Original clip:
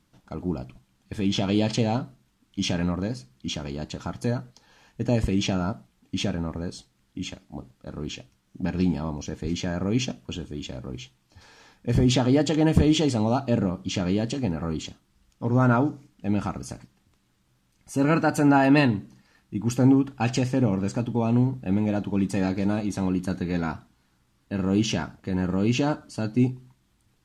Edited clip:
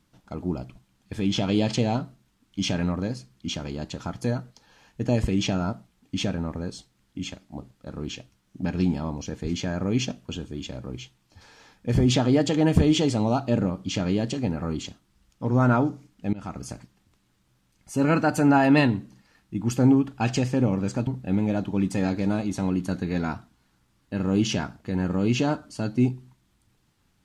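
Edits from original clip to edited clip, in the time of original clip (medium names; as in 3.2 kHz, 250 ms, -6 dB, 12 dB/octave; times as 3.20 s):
16.33–16.64 s: fade in, from -21 dB
21.07–21.46 s: delete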